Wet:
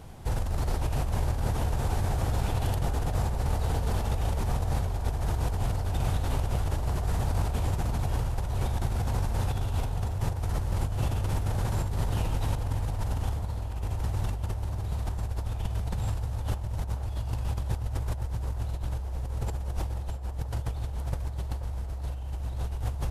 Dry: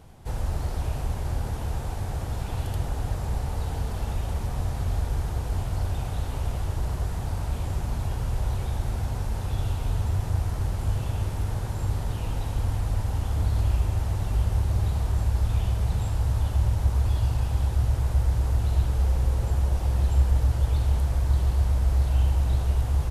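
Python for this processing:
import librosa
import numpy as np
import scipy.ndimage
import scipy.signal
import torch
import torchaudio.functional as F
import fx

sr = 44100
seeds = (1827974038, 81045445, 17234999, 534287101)

y = fx.over_compress(x, sr, threshold_db=-29.0, ratio=-1.0)
y = fx.echo_banded(y, sr, ms=483, feedback_pct=80, hz=680.0, wet_db=-9)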